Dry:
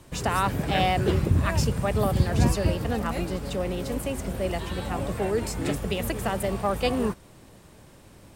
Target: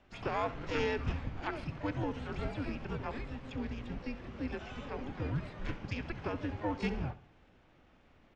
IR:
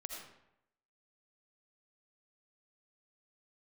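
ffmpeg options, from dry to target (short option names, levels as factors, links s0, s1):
-filter_complex "[0:a]highpass=f=250:t=q:w=0.5412,highpass=f=250:t=q:w=1.307,lowpass=f=3500:t=q:w=0.5176,lowpass=f=3500:t=q:w=0.7071,lowpass=f=3500:t=q:w=1.932,afreqshift=-300,asplit=2[s0][s1];[s1]asetrate=88200,aresample=44100,atempo=0.5,volume=0.251[s2];[s0][s2]amix=inputs=2:normalize=0,aecho=1:1:67|134|201|268:0.158|0.0682|0.0293|0.0126,volume=0.376"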